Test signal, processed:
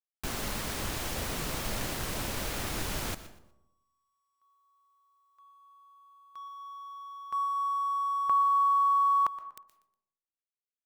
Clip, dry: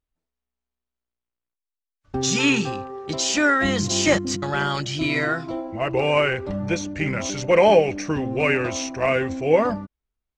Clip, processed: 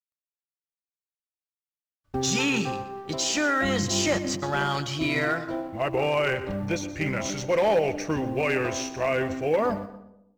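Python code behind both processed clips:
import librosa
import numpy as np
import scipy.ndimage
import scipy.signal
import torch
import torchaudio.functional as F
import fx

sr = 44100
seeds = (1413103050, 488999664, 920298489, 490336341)

p1 = fx.law_mismatch(x, sr, coded='A')
p2 = fx.dynamic_eq(p1, sr, hz=740.0, q=1.0, threshold_db=-33.0, ratio=4.0, max_db=3)
p3 = fx.over_compress(p2, sr, threshold_db=-21.0, ratio=-0.5)
p4 = p2 + F.gain(torch.from_numpy(p3), -3.0).numpy()
p5 = np.clip(10.0 ** (8.0 / 20.0) * p4, -1.0, 1.0) / 10.0 ** (8.0 / 20.0)
p6 = p5 + fx.echo_feedback(p5, sr, ms=121, feedback_pct=27, wet_db=-16.0, dry=0)
p7 = fx.rev_freeverb(p6, sr, rt60_s=0.85, hf_ratio=0.35, predelay_ms=100, drr_db=17.5)
y = F.gain(torch.from_numpy(p7), -8.5).numpy()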